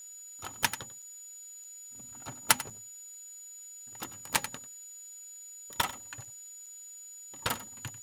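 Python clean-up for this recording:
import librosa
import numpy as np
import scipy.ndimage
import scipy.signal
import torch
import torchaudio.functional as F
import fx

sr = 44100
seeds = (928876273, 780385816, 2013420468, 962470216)

y = fx.notch(x, sr, hz=6900.0, q=30.0)
y = fx.fix_interpolate(y, sr, at_s=(0.64, 1.02, 1.64, 2.7, 4.35, 6.25, 6.66), length_ms=5.0)
y = fx.noise_reduce(y, sr, print_start_s=6.25, print_end_s=6.75, reduce_db=30.0)
y = fx.fix_echo_inverse(y, sr, delay_ms=94, level_db=-16.0)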